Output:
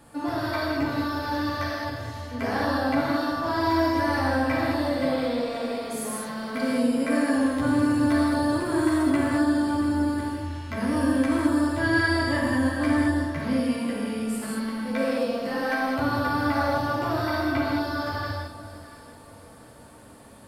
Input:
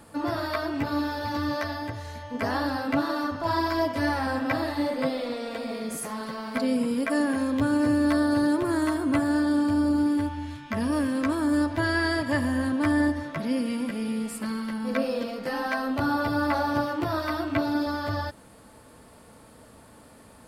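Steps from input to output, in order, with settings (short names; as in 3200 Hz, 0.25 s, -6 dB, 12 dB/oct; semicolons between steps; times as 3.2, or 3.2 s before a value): echo with dull and thin repeats by turns 0.342 s, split 1100 Hz, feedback 54%, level -11 dB; non-linear reverb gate 0.24 s flat, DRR -4.5 dB; gain -4 dB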